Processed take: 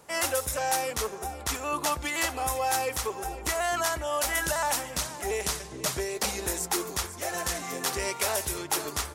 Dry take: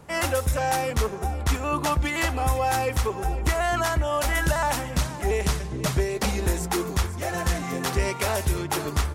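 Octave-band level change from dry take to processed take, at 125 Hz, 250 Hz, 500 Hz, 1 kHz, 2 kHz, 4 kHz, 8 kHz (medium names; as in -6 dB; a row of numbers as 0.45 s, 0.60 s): -15.0 dB, -8.5 dB, -4.5 dB, -3.5 dB, -3.0 dB, 0.0 dB, +3.0 dB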